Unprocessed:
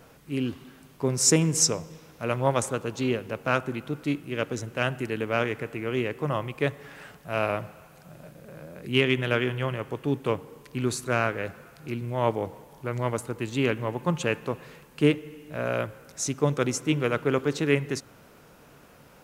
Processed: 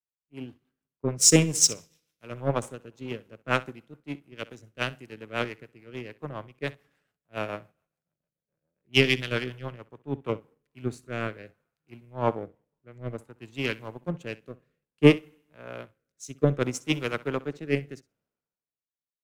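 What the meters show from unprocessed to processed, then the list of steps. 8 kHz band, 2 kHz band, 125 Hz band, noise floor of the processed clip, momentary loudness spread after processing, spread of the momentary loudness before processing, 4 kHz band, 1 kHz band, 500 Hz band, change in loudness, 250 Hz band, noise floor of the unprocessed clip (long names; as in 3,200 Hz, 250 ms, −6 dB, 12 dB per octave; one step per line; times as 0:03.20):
+2.0 dB, −2.0 dB, −2.5 dB, below −85 dBFS, 22 LU, 14 LU, +2.0 dB, −5.0 dB, −3.0 dB, +0.5 dB, −1.5 dB, −53 dBFS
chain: power curve on the samples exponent 1.4
rotating-speaker cabinet horn 7 Hz, later 0.6 Hz, at 0:10.06
flutter between parallel walls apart 11 metres, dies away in 0.21 s
multiband upward and downward expander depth 100%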